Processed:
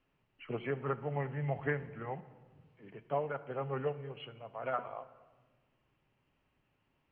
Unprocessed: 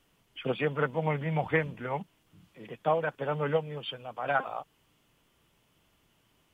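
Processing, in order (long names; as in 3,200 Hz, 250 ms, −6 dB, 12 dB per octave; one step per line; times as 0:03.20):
low-pass filter 2,900 Hz 12 dB per octave
convolution reverb RT60 1.3 s, pre-delay 7 ms, DRR 12.5 dB
wrong playback speed 48 kHz file played as 44.1 kHz
level −7.5 dB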